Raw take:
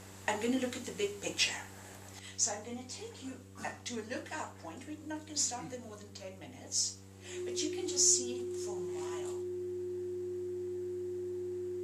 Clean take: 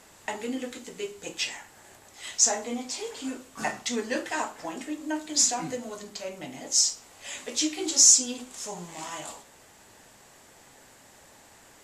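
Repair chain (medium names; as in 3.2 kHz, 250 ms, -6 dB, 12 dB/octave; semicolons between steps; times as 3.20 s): de-hum 96.8 Hz, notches 5; band-stop 360 Hz, Q 30; gain correction +10.5 dB, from 2.19 s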